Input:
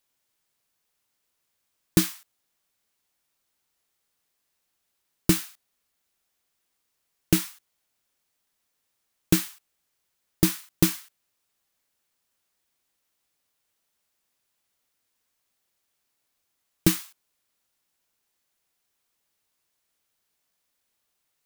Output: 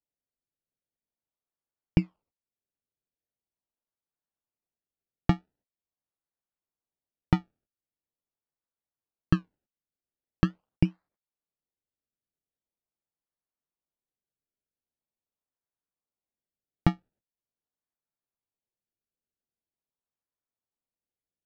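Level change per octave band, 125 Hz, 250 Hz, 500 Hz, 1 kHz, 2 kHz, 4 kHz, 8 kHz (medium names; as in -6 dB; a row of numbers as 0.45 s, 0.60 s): +1.0 dB, -3.5 dB, -7.5 dB, +4.0 dB, -6.0 dB, -14.5 dB, under -30 dB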